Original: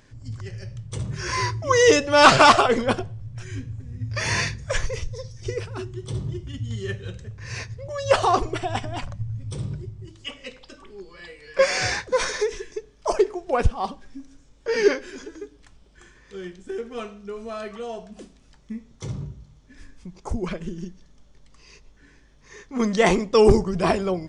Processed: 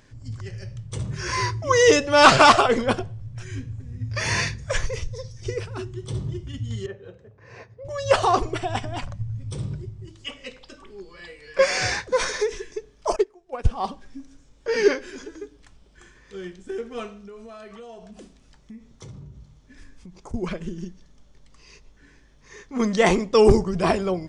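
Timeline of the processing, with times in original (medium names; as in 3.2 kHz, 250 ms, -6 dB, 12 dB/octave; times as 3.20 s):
6.86–7.85 s: band-pass filter 560 Hz, Q 1.1
13.16–13.68 s: upward expansion 2.5:1, over -26 dBFS
17.19–20.34 s: compression 4:1, threshold -39 dBFS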